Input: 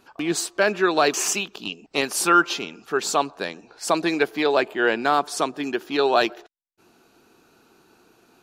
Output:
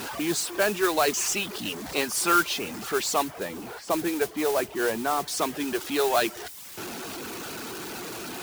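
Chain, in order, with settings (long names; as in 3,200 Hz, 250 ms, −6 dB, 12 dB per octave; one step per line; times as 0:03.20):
converter with a step at zero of −24 dBFS
high-pass filter 59 Hz
reverb reduction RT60 0.55 s
0:03.24–0:05.28: low-pass filter 1,300 Hz 6 dB per octave
noise that follows the level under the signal 11 dB
level −5.5 dB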